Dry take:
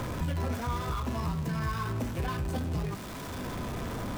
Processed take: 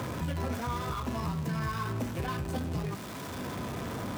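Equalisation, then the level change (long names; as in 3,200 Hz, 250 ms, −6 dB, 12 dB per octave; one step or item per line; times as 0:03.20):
high-pass filter 85 Hz
0.0 dB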